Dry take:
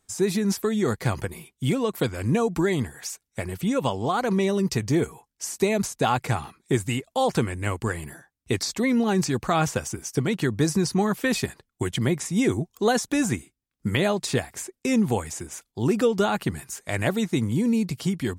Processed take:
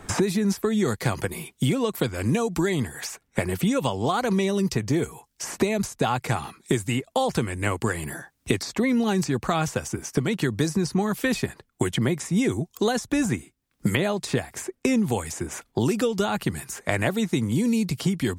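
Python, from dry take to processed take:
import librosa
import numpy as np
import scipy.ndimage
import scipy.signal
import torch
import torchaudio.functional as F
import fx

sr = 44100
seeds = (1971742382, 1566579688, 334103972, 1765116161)

y = fx.band_squash(x, sr, depth_pct=100)
y = y * librosa.db_to_amplitude(-1.0)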